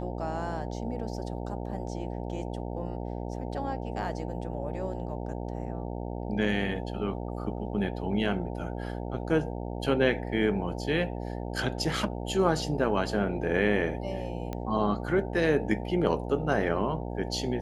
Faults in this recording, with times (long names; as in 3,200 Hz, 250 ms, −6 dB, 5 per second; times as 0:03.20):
mains buzz 60 Hz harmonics 15 −35 dBFS
0:14.53: click −21 dBFS